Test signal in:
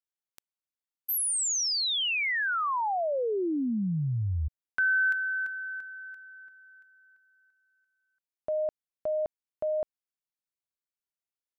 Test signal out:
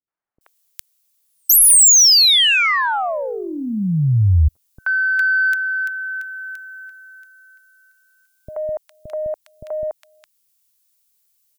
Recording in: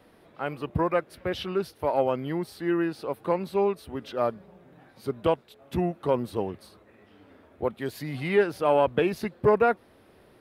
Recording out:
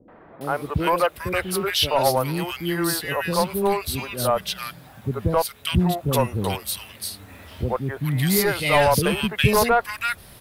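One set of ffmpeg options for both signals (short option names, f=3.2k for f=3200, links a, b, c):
-filter_complex "[0:a]lowshelf=f=210:g=-10,acrossover=split=400|1600[a][b][c];[b]adelay=80[d];[c]adelay=410[e];[a][d][e]amix=inputs=3:normalize=0,asplit=2[f][g];[g]acompressor=threshold=-40dB:ratio=6:attack=2.3:release=884:detection=rms,volume=-1.5dB[h];[f][h]amix=inputs=2:normalize=0,crystalizer=i=4:c=0,aeval=exprs='0.631*(cos(1*acos(clip(val(0)/0.631,-1,1)))-cos(1*PI/2))+0.251*(cos(5*acos(clip(val(0)/0.631,-1,1)))-cos(5*PI/2))+0.00562*(cos(6*acos(clip(val(0)/0.631,-1,1)))-cos(6*PI/2))+0.00447*(cos(8*acos(clip(val(0)/0.631,-1,1)))-cos(8*PI/2))':c=same,asubboost=boost=8.5:cutoff=120,volume=-1.5dB"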